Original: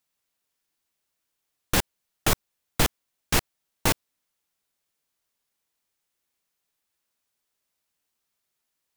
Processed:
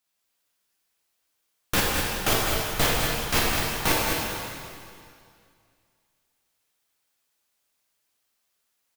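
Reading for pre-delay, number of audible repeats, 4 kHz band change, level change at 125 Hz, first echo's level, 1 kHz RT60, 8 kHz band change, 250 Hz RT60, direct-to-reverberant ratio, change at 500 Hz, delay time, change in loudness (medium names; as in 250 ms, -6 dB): 5 ms, 1, +4.5 dB, +1.0 dB, -6.5 dB, 2.3 s, +2.0 dB, 2.4 s, -5.5 dB, +4.5 dB, 208 ms, +2.5 dB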